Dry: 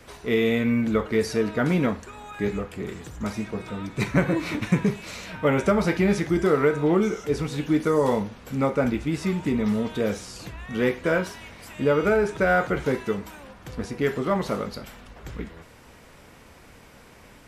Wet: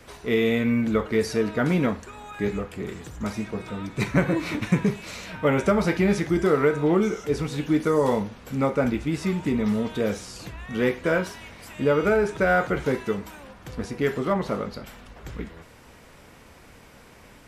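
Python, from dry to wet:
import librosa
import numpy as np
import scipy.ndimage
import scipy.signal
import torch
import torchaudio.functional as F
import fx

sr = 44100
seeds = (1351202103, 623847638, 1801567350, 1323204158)

y = fx.high_shelf(x, sr, hz=fx.line((14.32, 3600.0), (14.86, 5800.0)), db=-8.0, at=(14.32, 14.86), fade=0.02)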